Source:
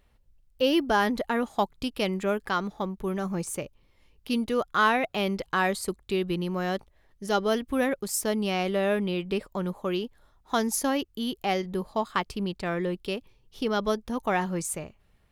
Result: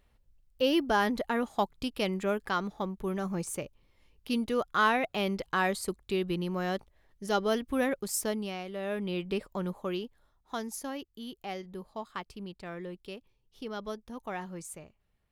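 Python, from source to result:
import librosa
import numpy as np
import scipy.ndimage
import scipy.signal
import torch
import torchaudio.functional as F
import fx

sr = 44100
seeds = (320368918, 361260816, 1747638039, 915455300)

y = fx.gain(x, sr, db=fx.line((8.23, -3.0), (8.67, -13.0), (9.17, -3.5), (9.73, -3.5), (10.74, -11.5)))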